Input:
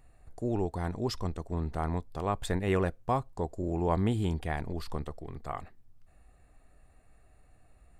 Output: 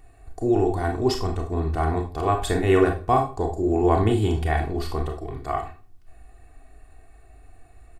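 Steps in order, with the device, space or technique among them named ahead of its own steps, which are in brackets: microphone above a desk (comb 2.7 ms, depth 60%; reverberation RT60 0.40 s, pre-delay 28 ms, DRR 3 dB); trim +6 dB

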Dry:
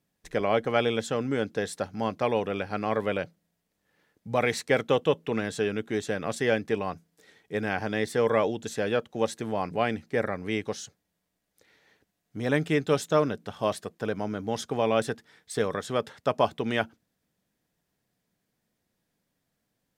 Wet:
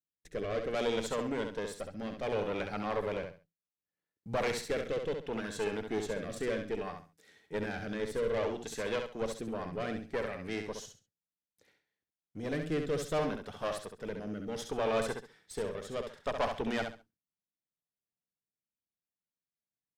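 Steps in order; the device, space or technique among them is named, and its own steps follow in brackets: overdriven rotary cabinet (valve stage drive 25 dB, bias 0.75; rotary cabinet horn 0.65 Hz); gate with hold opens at -56 dBFS; feedback delay 67 ms, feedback 25%, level -6 dB

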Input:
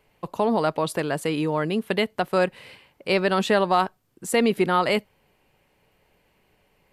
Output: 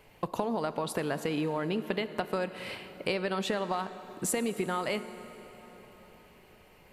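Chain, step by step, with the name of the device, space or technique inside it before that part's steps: serial compression, leveller first (compression 2.5:1, threshold -22 dBFS, peak gain reduction 5 dB; compression 6:1, threshold -35 dBFS, peak gain reduction 14 dB); 1.03–2.12 s: peaking EQ 9.4 kHz -12.5 dB 0.44 oct; plate-style reverb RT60 4.6 s, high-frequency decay 0.7×, DRR 11.5 dB; trim +6 dB

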